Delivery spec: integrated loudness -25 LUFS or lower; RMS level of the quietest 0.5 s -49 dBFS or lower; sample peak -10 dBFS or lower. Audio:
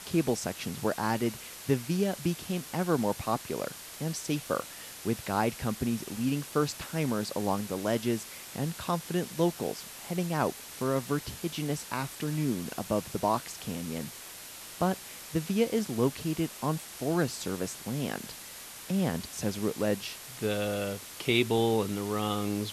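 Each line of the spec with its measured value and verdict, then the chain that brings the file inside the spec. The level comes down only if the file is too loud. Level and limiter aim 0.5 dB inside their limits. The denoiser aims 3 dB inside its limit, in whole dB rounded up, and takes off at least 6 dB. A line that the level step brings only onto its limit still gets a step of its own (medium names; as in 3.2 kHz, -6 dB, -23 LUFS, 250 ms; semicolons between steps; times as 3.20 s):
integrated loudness -31.5 LUFS: pass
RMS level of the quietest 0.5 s -45 dBFS: fail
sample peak -11.5 dBFS: pass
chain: noise reduction 7 dB, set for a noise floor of -45 dBFS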